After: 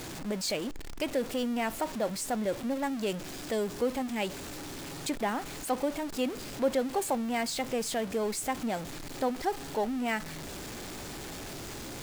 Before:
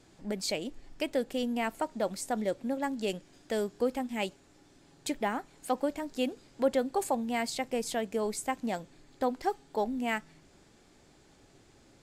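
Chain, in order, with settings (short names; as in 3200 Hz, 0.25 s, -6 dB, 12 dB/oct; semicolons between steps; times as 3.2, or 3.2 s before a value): zero-crossing step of -34 dBFS; gain -1.5 dB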